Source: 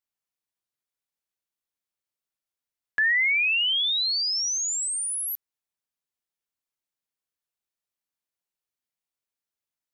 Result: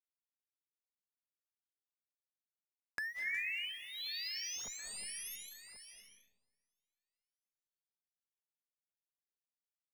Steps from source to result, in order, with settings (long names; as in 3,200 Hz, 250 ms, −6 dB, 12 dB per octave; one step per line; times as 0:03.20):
adaptive Wiener filter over 9 samples
high-pass filter 210 Hz 6 dB per octave
spectral tilt −2 dB per octave
treble cut that deepens with the level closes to 2,800 Hz, closed at −28 dBFS
in parallel at −9.5 dB: comparator with hysteresis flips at −37 dBFS
on the sum: parametric band 7,700 Hz −10 dB 0.23 octaves
delay that swaps between a low-pass and a high-pass 362 ms, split 2,400 Hz, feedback 58%, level −10 dB
noise gate −56 dBFS, range −27 dB
wave folding −22 dBFS
downward compressor 3 to 1, threshold −46 dBFS, peak gain reduction 15.5 dB
on a send at −3.5 dB: convolution reverb RT60 1.2 s, pre-delay 164 ms
on the sum: auto-filter notch sine 1.1 Hz 710–3,300 Hz
level +2.5 dB